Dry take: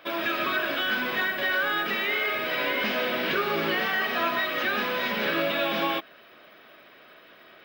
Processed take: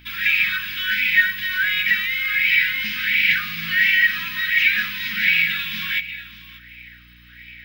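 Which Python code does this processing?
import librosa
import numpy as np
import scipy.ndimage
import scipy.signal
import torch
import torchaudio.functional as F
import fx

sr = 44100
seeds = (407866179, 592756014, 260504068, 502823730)

y = scipy.signal.sosfilt(scipy.signal.cheby1(3, 1.0, [190.0, 2000.0], 'bandstop', fs=sr, output='sos'), x)
y = fx.high_shelf(y, sr, hz=4700.0, db=4.5)
y = fx.add_hum(y, sr, base_hz=60, snr_db=21)
y = fx.dynamic_eq(y, sr, hz=350.0, q=0.95, threshold_db=-54.0, ratio=4.0, max_db=-5)
y = y + 10.0 ** (-15.0 / 20.0) * np.pad(y, (int(589 * sr / 1000.0), 0))[:len(y)]
y = fx.bell_lfo(y, sr, hz=1.4, low_hz=900.0, high_hz=2400.0, db=16)
y = y * librosa.db_to_amplitude(2.5)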